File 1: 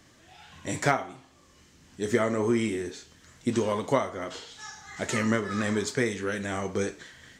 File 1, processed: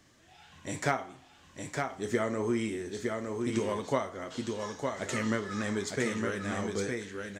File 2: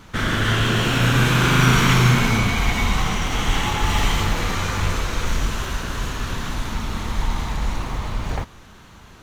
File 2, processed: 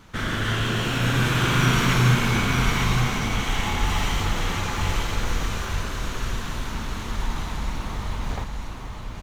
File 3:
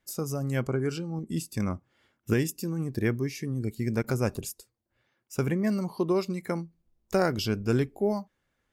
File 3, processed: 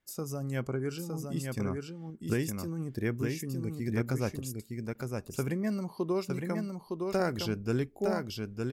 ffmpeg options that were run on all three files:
-af "aecho=1:1:911:0.631,volume=-5dB"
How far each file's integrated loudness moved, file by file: −4.5, −3.5, −4.5 LU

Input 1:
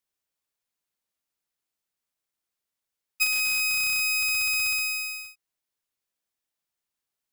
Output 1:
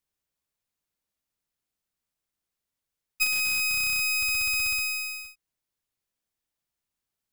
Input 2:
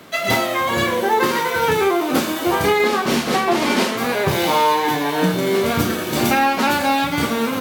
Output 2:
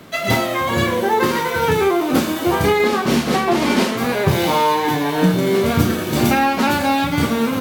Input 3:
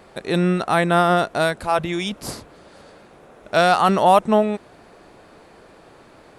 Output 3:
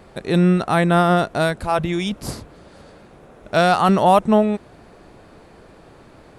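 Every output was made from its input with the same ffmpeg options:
-af "lowshelf=frequency=220:gain=9.5,volume=-1dB"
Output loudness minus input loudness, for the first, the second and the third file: −1.0, +1.0, +1.0 LU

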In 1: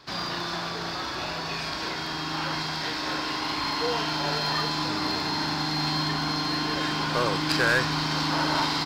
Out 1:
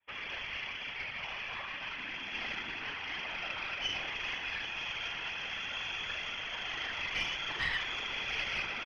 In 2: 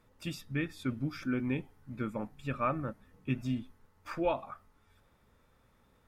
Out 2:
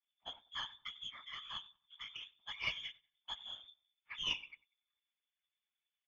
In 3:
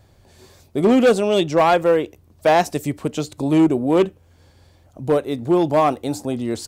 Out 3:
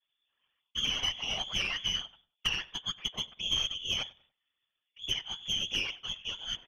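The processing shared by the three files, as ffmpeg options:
-filter_complex "[0:a]agate=range=-19dB:threshold=-42dB:ratio=16:detection=peak,equalizer=frequency=210:width_type=o:width=2.1:gain=-9.5,aecho=1:1:6.2:0.77,adynamicequalizer=threshold=0.0224:dfrequency=590:dqfactor=1.3:tfrequency=590:tqfactor=1.3:attack=5:release=100:ratio=0.375:range=2:mode=cutabove:tftype=bell,acompressor=threshold=-21dB:ratio=20,lowpass=frequency=3000:width_type=q:width=0.5098,lowpass=frequency=3000:width_type=q:width=0.6013,lowpass=frequency=3000:width_type=q:width=0.9,lowpass=frequency=3000:width_type=q:width=2.563,afreqshift=-3500,aeval=exprs='(tanh(7.08*val(0)+0.7)-tanh(0.7))/7.08':channel_layout=same,afftfilt=real='hypot(re,im)*cos(2*PI*random(0))':imag='hypot(re,im)*sin(2*PI*random(1))':win_size=512:overlap=0.75,asplit=2[link_01][link_02];[link_02]adelay=95,lowpass=frequency=2200:poles=1,volume=-21dB,asplit=2[link_03][link_04];[link_04]adelay=95,lowpass=frequency=2200:poles=1,volume=0.36,asplit=2[link_05][link_06];[link_06]adelay=95,lowpass=frequency=2200:poles=1,volume=0.36[link_07];[link_01][link_03][link_05][link_07]amix=inputs=4:normalize=0,volume=2dB"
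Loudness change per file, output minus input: −9.0, −7.0, −13.5 LU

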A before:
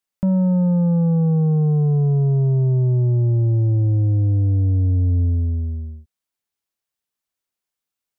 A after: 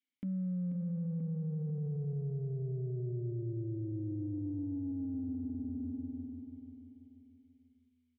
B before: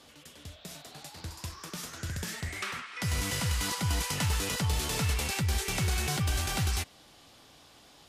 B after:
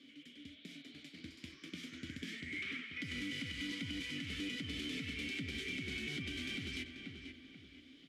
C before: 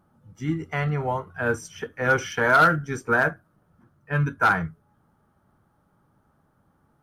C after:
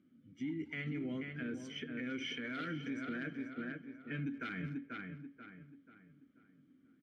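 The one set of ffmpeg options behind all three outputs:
-filter_complex "[0:a]asplit=3[link_01][link_02][link_03];[link_01]bandpass=frequency=270:width_type=q:width=8,volume=0dB[link_04];[link_02]bandpass=frequency=2290:width_type=q:width=8,volume=-6dB[link_05];[link_03]bandpass=frequency=3010:width_type=q:width=8,volume=-9dB[link_06];[link_04][link_05][link_06]amix=inputs=3:normalize=0,asplit=2[link_07][link_08];[link_08]acompressor=threshold=-45dB:ratio=6,volume=1dB[link_09];[link_07][link_09]amix=inputs=2:normalize=0,asplit=2[link_10][link_11];[link_11]adelay=210,highpass=300,lowpass=3400,asoftclip=type=hard:threshold=-33dB,volume=-23dB[link_12];[link_10][link_12]amix=inputs=2:normalize=0,aeval=exprs='0.0668*(cos(1*acos(clip(val(0)/0.0668,-1,1)))-cos(1*PI/2))+0.00211*(cos(3*acos(clip(val(0)/0.0668,-1,1)))-cos(3*PI/2))':channel_layout=same,asplit=2[link_13][link_14];[link_14]adelay=486,lowpass=frequency=2700:poles=1,volume=-8.5dB,asplit=2[link_15][link_16];[link_16]adelay=486,lowpass=frequency=2700:poles=1,volume=0.41,asplit=2[link_17][link_18];[link_18]adelay=486,lowpass=frequency=2700:poles=1,volume=0.41,asplit=2[link_19][link_20];[link_20]adelay=486,lowpass=frequency=2700:poles=1,volume=0.41,asplit=2[link_21][link_22];[link_22]adelay=486,lowpass=frequency=2700:poles=1,volume=0.41[link_23];[link_15][link_17][link_19][link_21][link_23]amix=inputs=5:normalize=0[link_24];[link_13][link_24]amix=inputs=2:normalize=0,alimiter=level_in=10.5dB:limit=-24dB:level=0:latency=1:release=78,volume=-10.5dB,volume=2.5dB"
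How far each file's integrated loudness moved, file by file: −20.0, −11.0, −18.5 LU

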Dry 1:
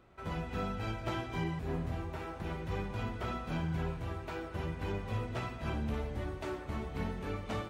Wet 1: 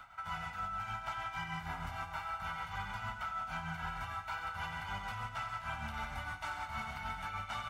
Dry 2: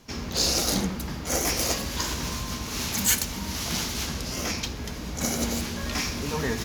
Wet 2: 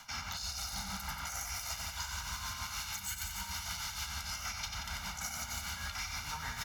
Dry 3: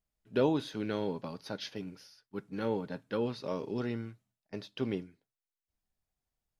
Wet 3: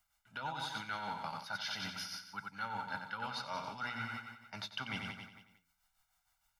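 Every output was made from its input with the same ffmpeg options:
-filter_complex "[0:a]lowshelf=frequency=720:width_type=q:width=3:gain=-12.5,bandreject=frequency=60:width_type=h:width=6,bandreject=frequency=120:width_type=h:width=6,bandreject=frequency=180:width_type=h:width=6,bandreject=frequency=240:width_type=h:width=6,aecho=1:1:1.4:0.8,asplit=2[link_01][link_02];[link_02]aecho=0:1:91|182|273|364|455|546|637:0.422|0.24|0.137|0.0781|0.0445|0.0254|0.0145[link_03];[link_01][link_03]amix=inputs=2:normalize=0,acrossover=split=130[link_04][link_05];[link_05]acompressor=threshold=-35dB:ratio=5[link_06];[link_04][link_06]amix=inputs=2:normalize=0,tremolo=f=6.5:d=0.52,areverse,acompressor=threshold=-50dB:ratio=6,areverse,volume=12dB"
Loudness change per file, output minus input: −2.0, −11.5, −5.5 LU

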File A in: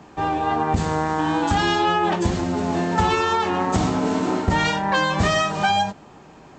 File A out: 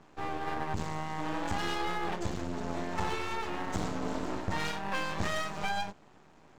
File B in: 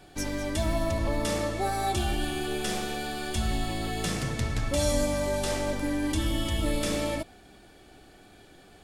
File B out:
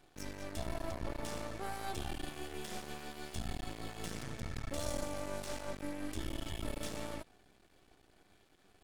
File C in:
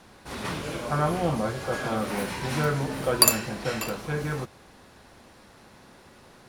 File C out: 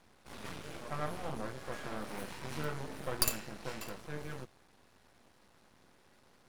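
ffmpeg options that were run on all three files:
-af "aeval=exprs='max(val(0),0)':channel_layout=same,volume=-9dB"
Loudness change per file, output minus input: −14.0, −13.0, −13.5 LU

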